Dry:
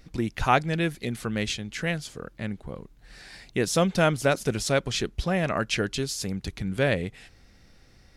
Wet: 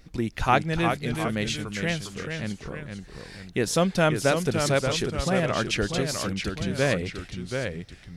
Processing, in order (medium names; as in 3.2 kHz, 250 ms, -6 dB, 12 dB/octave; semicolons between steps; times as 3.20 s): ever faster or slower copies 327 ms, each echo -1 st, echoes 2, each echo -6 dB; short-mantissa float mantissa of 8-bit